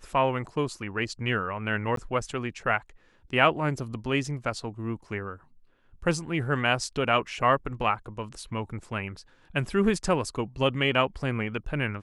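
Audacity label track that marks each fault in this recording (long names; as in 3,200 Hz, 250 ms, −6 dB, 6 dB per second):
1.960000	1.970000	drop-out 13 ms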